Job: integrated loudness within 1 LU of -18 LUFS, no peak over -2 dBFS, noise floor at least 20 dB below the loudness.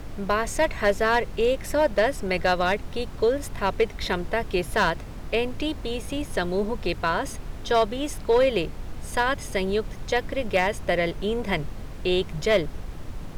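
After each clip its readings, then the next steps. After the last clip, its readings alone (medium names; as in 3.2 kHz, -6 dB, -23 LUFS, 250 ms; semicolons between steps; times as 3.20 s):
clipped samples 0.4%; clipping level -13.5 dBFS; noise floor -37 dBFS; noise floor target -46 dBFS; loudness -25.5 LUFS; peak level -13.5 dBFS; loudness target -18.0 LUFS
-> clip repair -13.5 dBFS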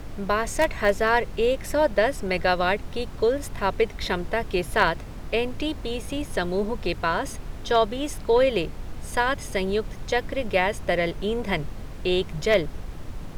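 clipped samples 0.0%; noise floor -37 dBFS; noise floor target -45 dBFS
-> noise print and reduce 8 dB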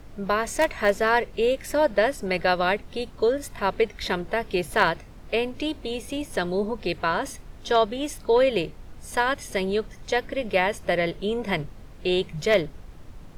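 noise floor -44 dBFS; noise floor target -45 dBFS
-> noise print and reduce 6 dB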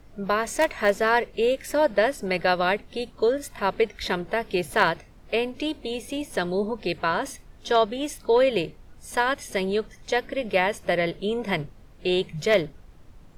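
noise floor -50 dBFS; loudness -25.0 LUFS; peak level -5.0 dBFS; loudness target -18.0 LUFS
-> trim +7 dB; peak limiter -2 dBFS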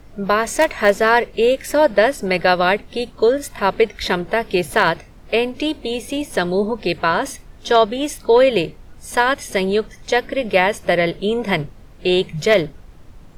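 loudness -18.5 LUFS; peak level -2.0 dBFS; noise floor -43 dBFS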